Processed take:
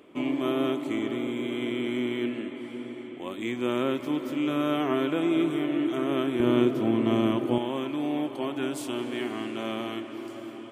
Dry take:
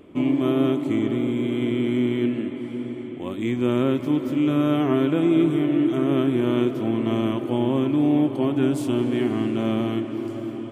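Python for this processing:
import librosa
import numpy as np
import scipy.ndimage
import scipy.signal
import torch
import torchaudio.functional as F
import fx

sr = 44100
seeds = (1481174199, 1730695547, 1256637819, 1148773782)

y = fx.highpass(x, sr, hz=fx.steps((0.0, 570.0), (6.4, 130.0), (7.58, 880.0)), slope=6)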